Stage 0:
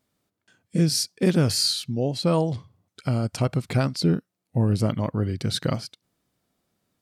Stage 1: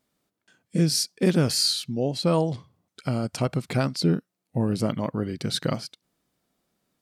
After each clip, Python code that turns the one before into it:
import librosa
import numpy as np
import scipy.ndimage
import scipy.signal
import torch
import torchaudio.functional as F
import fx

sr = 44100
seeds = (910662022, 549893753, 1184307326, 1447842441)

y = fx.peak_eq(x, sr, hz=96.0, db=-10.0, octaves=0.55)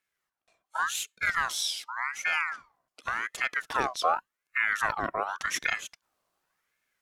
y = fx.rider(x, sr, range_db=10, speed_s=2.0)
y = fx.ring_lfo(y, sr, carrier_hz=1400.0, swing_pct=40, hz=0.88)
y = y * 10.0 ** (-2.5 / 20.0)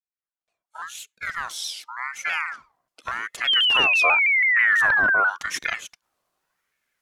y = fx.fade_in_head(x, sr, length_s=2.23)
y = fx.spec_paint(y, sr, seeds[0], shape='fall', start_s=3.47, length_s=1.83, low_hz=1400.0, high_hz=3200.0, level_db=-21.0)
y = fx.vibrato_shape(y, sr, shape='saw_down', rate_hz=6.1, depth_cents=100.0)
y = y * 10.0 ** (2.0 / 20.0)